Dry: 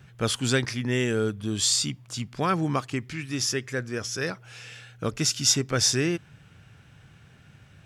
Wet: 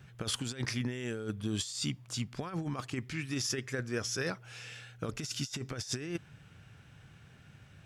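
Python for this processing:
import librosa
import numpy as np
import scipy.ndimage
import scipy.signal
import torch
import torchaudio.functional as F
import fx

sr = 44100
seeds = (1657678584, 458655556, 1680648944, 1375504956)

y = fx.over_compress(x, sr, threshold_db=-28.0, ratio=-0.5)
y = y * librosa.db_to_amplitude(-6.5)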